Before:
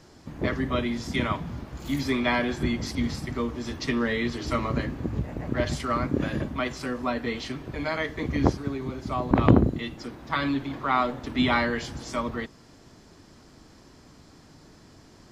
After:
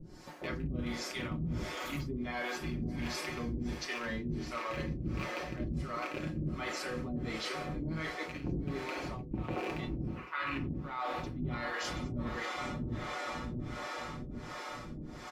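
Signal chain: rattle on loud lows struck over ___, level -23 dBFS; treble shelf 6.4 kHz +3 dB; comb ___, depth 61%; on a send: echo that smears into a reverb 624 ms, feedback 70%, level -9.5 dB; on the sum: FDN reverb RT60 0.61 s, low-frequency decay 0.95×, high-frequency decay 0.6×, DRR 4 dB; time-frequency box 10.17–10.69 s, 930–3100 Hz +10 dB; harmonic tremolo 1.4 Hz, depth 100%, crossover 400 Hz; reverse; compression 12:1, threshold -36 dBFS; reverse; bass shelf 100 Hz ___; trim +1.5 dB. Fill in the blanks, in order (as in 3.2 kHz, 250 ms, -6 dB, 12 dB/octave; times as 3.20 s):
-26 dBFS, 5.5 ms, +7 dB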